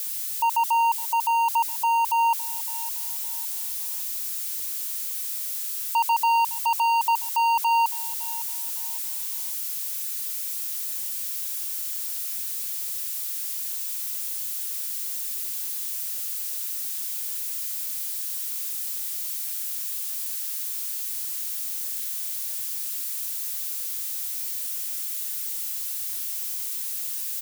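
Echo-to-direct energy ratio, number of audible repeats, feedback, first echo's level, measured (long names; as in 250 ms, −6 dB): −17.5 dB, 2, 30%, −18.0 dB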